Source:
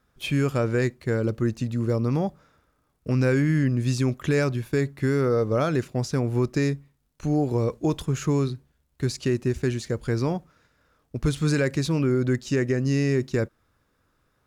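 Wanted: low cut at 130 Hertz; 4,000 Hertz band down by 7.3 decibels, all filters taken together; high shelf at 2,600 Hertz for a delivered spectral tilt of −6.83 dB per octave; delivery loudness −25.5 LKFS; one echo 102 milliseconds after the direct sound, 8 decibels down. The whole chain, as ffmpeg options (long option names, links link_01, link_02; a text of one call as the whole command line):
ffmpeg -i in.wav -af "highpass=130,highshelf=frequency=2600:gain=-6,equalizer=frequency=4000:width_type=o:gain=-4,aecho=1:1:102:0.398,volume=0.5dB" out.wav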